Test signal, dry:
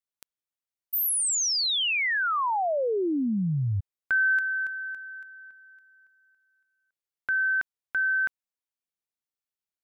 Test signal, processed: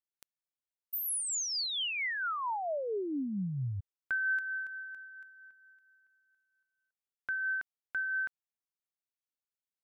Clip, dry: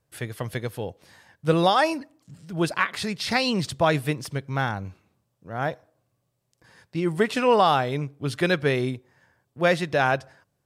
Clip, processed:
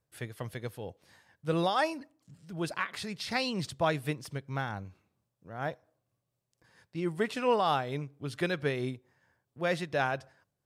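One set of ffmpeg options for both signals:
ffmpeg -i in.wav -af "tremolo=f=4.4:d=0.32,volume=-7dB" out.wav

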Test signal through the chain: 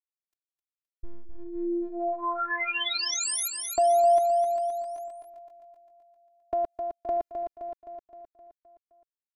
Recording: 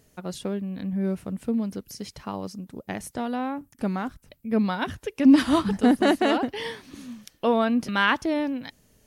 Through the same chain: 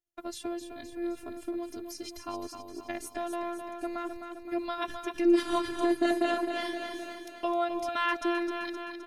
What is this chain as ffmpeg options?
ffmpeg -i in.wav -filter_complex "[0:a]afftfilt=real='hypot(re,im)*cos(PI*b)':imag='0':win_size=512:overlap=0.75,agate=range=-33dB:threshold=-46dB:ratio=3:detection=peak,aecho=1:1:260|520|780|1040|1300|1560|1820:0.422|0.232|0.128|0.0702|0.0386|0.0212|0.0117,asplit=2[link_01][link_02];[link_02]acompressor=threshold=-31dB:ratio=6,volume=1dB[link_03];[link_01][link_03]amix=inputs=2:normalize=0,volume=-6dB" out.wav

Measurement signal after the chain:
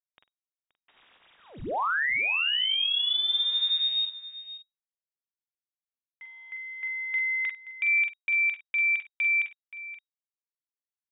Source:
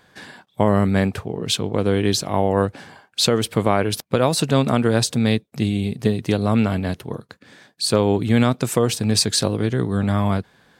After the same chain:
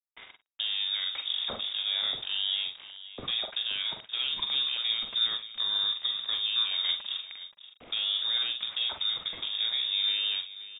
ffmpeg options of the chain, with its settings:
ffmpeg -i in.wav -filter_complex "[0:a]alimiter=limit=-15dB:level=0:latency=1:release=239,aeval=exprs='val(0)*gte(abs(val(0)),0.0188)':channel_layout=same,asplit=2[link_01][link_02];[link_02]adelay=44,volume=-6dB[link_03];[link_01][link_03]amix=inputs=2:normalize=0,lowpass=frequency=3200:width_type=q:width=0.5098,lowpass=frequency=3200:width_type=q:width=0.6013,lowpass=frequency=3200:width_type=q:width=0.9,lowpass=frequency=3200:width_type=q:width=2.563,afreqshift=-3800,aecho=1:1:53|526:0.211|0.178,volume=-5dB" out.wav

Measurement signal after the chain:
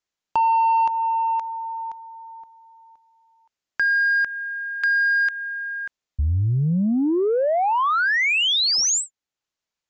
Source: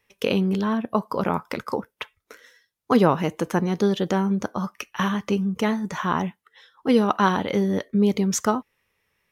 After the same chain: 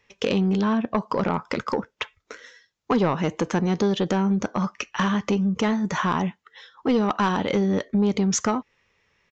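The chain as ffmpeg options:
ffmpeg -i in.wav -af "acompressor=threshold=-25dB:ratio=2,aresample=16000,asoftclip=type=tanh:threshold=-19dB,aresample=44100,volume=5.5dB" out.wav

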